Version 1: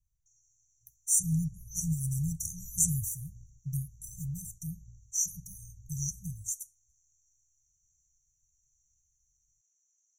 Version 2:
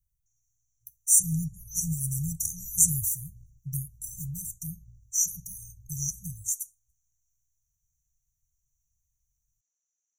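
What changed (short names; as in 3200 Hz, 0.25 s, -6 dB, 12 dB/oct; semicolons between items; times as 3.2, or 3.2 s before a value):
speech: add high shelf 7400 Hz +11 dB; background -10.0 dB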